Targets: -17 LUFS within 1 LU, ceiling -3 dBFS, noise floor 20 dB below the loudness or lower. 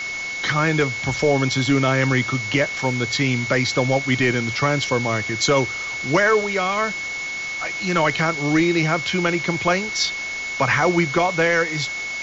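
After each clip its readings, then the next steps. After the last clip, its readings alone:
steady tone 2200 Hz; tone level -26 dBFS; noise floor -28 dBFS; noise floor target -40 dBFS; loudness -20.0 LUFS; peak -7.5 dBFS; loudness target -17.0 LUFS
-> notch 2200 Hz, Q 30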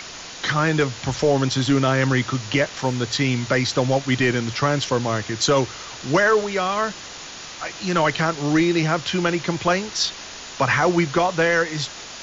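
steady tone none; noise floor -37 dBFS; noise floor target -41 dBFS
-> denoiser 6 dB, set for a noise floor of -37 dBFS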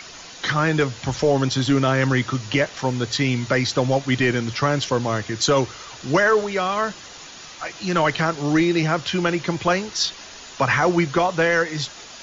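noise floor -40 dBFS; noise floor target -41 dBFS
-> denoiser 6 dB, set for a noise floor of -40 dBFS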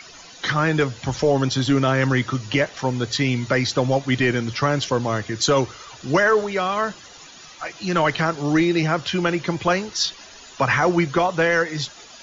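noise floor -44 dBFS; loudness -21.0 LUFS; peak -8.5 dBFS; loudness target -17.0 LUFS
-> gain +4 dB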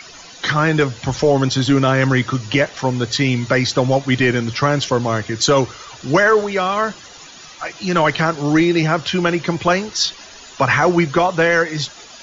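loudness -17.0 LUFS; peak -4.5 dBFS; noise floor -40 dBFS

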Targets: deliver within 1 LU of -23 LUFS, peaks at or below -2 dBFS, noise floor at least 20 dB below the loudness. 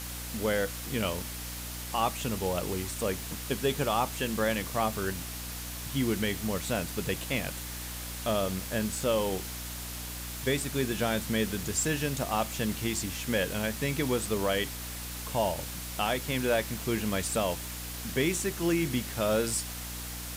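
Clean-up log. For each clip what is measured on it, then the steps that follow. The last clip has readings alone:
hum 60 Hz; harmonics up to 300 Hz; hum level -39 dBFS; noise floor -39 dBFS; noise floor target -51 dBFS; loudness -31.0 LUFS; peak -15.5 dBFS; loudness target -23.0 LUFS
-> de-hum 60 Hz, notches 5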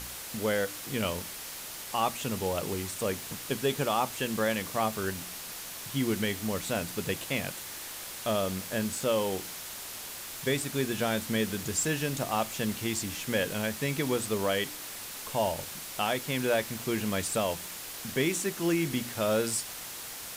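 hum none; noise floor -41 dBFS; noise floor target -51 dBFS
-> denoiser 10 dB, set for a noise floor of -41 dBFS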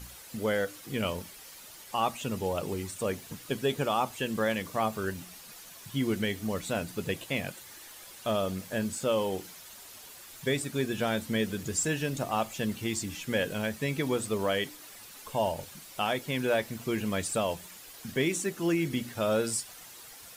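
noise floor -49 dBFS; noise floor target -52 dBFS
-> denoiser 6 dB, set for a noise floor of -49 dBFS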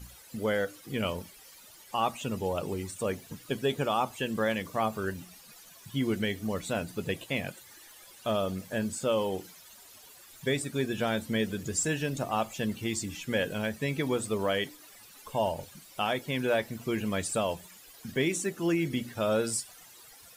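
noise floor -53 dBFS; loudness -31.5 LUFS; peak -16.0 dBFS; loudness target -23.0 LUFS
-> gain +8.5 dB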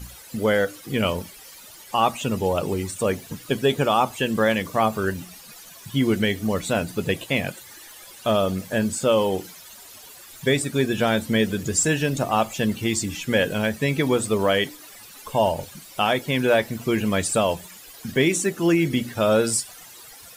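loudness -23.0 LUFS; peak -7.5 dBFS; noise floor -45 dBFS

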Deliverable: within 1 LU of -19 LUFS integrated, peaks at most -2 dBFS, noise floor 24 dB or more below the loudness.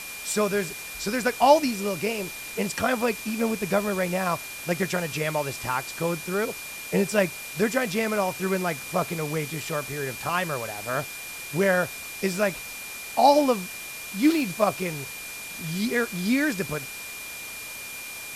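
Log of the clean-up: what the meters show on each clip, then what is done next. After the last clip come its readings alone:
steady tone 2400 Hz; tone level -38 dBFS; noise floor -38 dBFS; noise floor target -51 dBFS; loudness -26.5 LUFS; peak -5.0 dBFS; loudness target -19.0 LUFS
-> notch 2400 Hz, Q 30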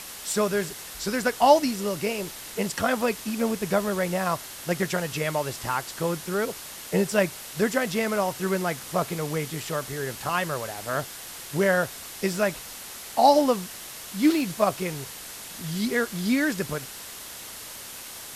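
steady tone none; noise floor -40 dBFS; noise floor target -50 dBFS
-> denoiser 10 dB, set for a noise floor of -40 dBFS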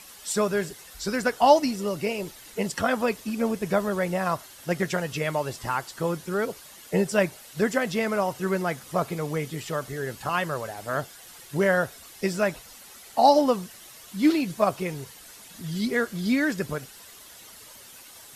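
noise floor -47 dBFS; noise floor target -51 dBFS
-> denoiser 6 dB, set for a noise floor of -47 dBFS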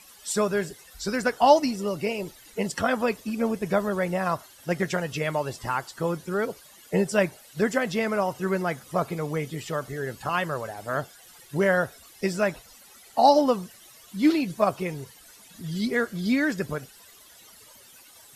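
noise floor -52 dBFS; loudness -26.5 LUFS; peak -5.0 dBFS; loudness target -19.0 LUFS
-> gain +7.5 dB; limiter -2 dBFS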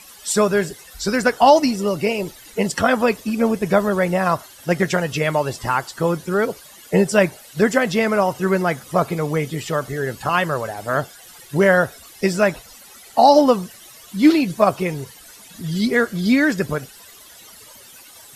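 loudness -19.5 LUFS; peak -2.0 dBFS; noise floor -44 dBFS

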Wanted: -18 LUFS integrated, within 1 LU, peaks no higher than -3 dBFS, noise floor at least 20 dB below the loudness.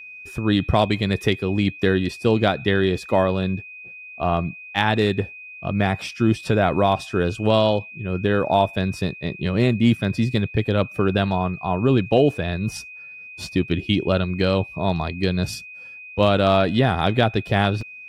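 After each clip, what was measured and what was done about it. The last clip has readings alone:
dropouts 1; longest dropout 2.9 ms; steady tone 2500 Hz; tone level -37 dBFS; loudness -21.5 LUFS; peak -5.5 dBFS; loudness target -18.0 LUFS
-> interpolate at 17.81, 2.9 ms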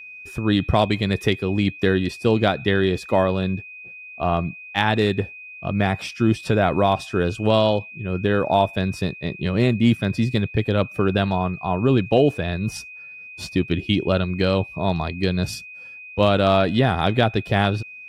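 dropouts 0; steady tone 2500 Hz; tone level -37 dBFS
-> notch 2500 Hz, Q 30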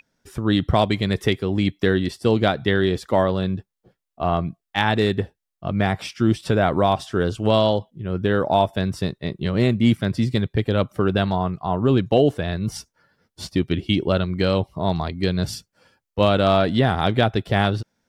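steady tone none; loudness -21.5 LUFS; peak -5.5 dBFS; loudness target -18.0 LUFS
-> gain +3.5 dB; limiter -3 dBFS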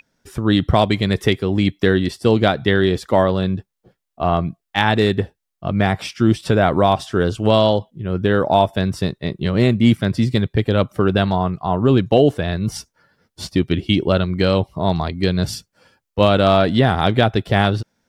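loudness -18.0 LUFS; peak -3.0 dBFS; noise floor -79 dBFS

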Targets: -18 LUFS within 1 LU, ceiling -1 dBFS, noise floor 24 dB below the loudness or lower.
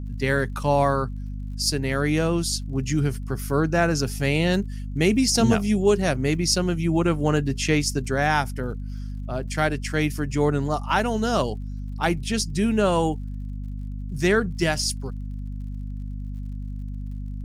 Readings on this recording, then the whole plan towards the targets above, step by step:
ticks 50/s; hum 50 Hz; harmonics up to 250 Hz; hum level -29 dBFS; loudness -23.5 LUFS; peak -7.0 dBFS; loudness target -18.0 LUFS
-> de-click; notches 50/100/150/200/250 Hz; gain +5.5 dB

